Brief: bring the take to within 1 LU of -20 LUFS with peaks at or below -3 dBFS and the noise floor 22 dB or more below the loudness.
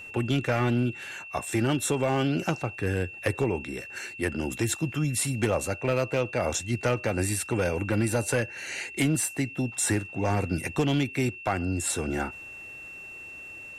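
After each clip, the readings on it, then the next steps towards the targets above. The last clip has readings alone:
clipped samples 0.7%; clipping level -17.5 dBFS; steady tone 2.7 kHz; tone level -40 dBFS; loudness -28.0 LUFS; peak level -17.5 dBFS; loudness target -20.0 LUFS
-> clip repair -17.5 dBFS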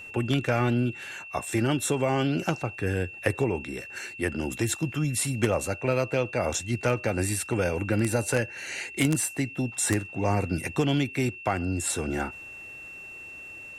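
clipped samples 0.0%; steady tone 2.7 kHz; tone level -40 dBFS
-> band-stop 2.7 kHz, Q 30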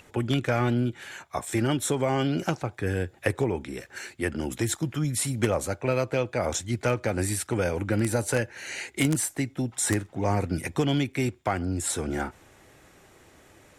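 steady tone not found; loudness -28.0 LUFS; peak level -8.5 dBFS; loudness target -20.0 LUFS
-> trim +8 dB; peak limiter -3 dBFS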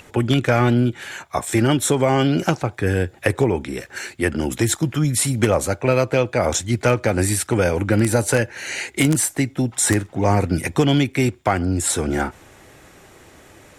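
loudness -20.0 LUFS; peak level -3.0 dBFS; noise floor -48 dBFS

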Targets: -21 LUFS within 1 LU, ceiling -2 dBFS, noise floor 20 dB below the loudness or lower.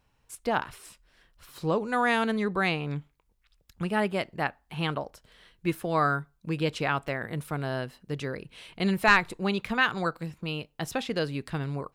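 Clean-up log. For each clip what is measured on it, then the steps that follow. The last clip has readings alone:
dropouts 1; longest dropout 3.8 ms; loudness -29.0 LUFS; peak level -7.0 dBFS; loudness target -21.0 LUFS
-> interpolate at 7.08 s, 3.8 ms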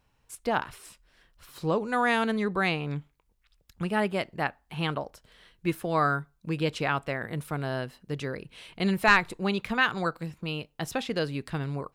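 dropouts 0; loudness -29.0 LUFS; peak level -7.0 dBFS; loudness target -21.0 LUFS
-> trim +8 dB; peak limiter -2 dBFS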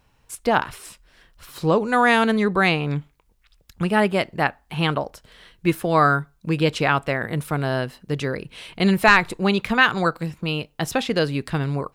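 loudness -21.5 LUFS; peak level -2.0 dBFS; noise floor -62 dBFS

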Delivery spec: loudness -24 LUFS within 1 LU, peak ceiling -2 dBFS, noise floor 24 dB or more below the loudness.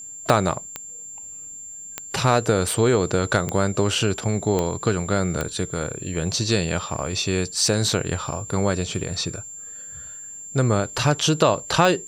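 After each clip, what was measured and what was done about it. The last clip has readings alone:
clicks found 7; steady tone 7.3 kHz; tone level -35 dBFS; loudness -22.5 LUFS; peak level -2.5 dBFS; loudness target -24.0 LUFS
-> de-click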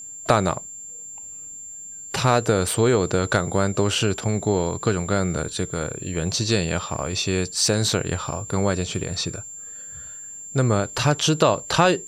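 clicks found 0; steady tone 7.3 kHz; tone level -35 dBFS
-> band-stop 7.3 kHz, Q 30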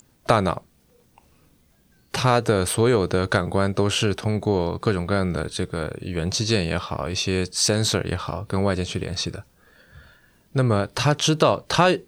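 steady tone not found; loudness -22.5 LUFS; peak level -2.5 dBFS; loudness target -24.0 LUFS
-> trim -1.5 dB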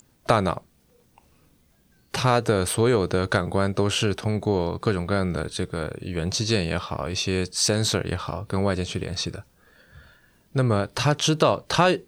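loudness -24.0 LUFS; peak level -4.0 dBFS; noise floor -61 dBFS

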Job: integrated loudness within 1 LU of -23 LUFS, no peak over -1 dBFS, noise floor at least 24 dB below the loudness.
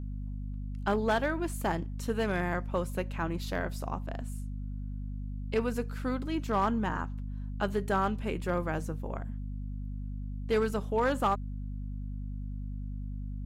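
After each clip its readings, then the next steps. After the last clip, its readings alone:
clipped samples 0.4%; clipping level -20.0 dBFS; hum 50 Hz; highest harmonic 250 Hz; hum level -34 dBFS; loudness -33.5 LUFS; peak level -20.0 dBFS; loudness target -23.0 LUFS
-> clip repair -20 dBFS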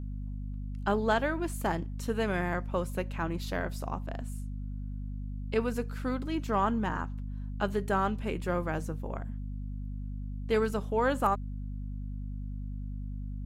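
clipped samples 0.0%; hum 50 Hz; highest harmonic 250 Hz; hum level -34 dBFS
-> hum notches 50/100/150/200/250 Hz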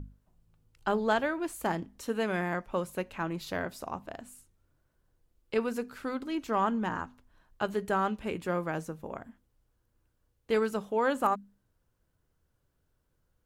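hum not found; loudness -32.5 LUFS; peak level -13.5 dBFS; loudness target -23.0 LUFS
-> trim +9.5 dB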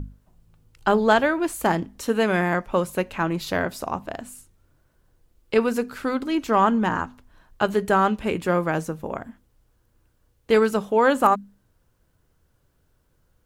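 loudness -23.0 LUFS; peak level -4.0 dBFS; noise floor -66 dBFS

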